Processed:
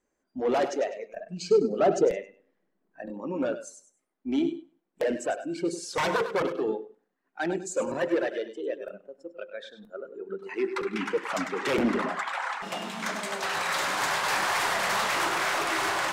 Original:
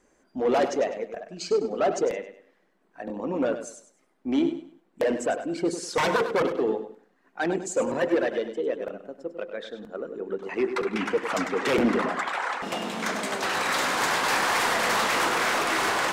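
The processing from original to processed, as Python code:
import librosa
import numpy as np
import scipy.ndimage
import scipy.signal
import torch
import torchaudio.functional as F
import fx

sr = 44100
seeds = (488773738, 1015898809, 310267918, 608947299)

y = fx.noise_reduce_blind(x, sr, reduce_db=12)
y = fx.low_shelf(y, sr, hz=460.0, db=10.5, at=(1.15, 3.06))
y = y * 10.0 ** (-2.5 / 20.0)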